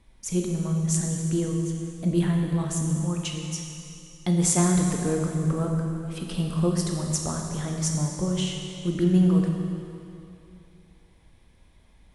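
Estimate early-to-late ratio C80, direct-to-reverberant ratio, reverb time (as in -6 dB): 3.5 dB, 1.0 dB, 2.7 s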